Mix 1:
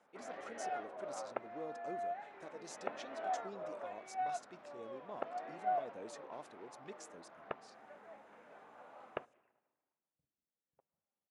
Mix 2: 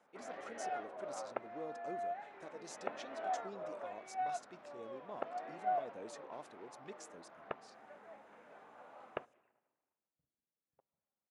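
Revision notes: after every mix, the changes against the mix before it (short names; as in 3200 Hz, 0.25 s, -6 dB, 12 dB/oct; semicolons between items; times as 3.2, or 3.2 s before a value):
none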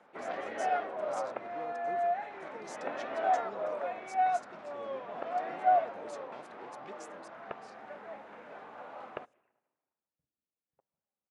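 first sound +10.0 dB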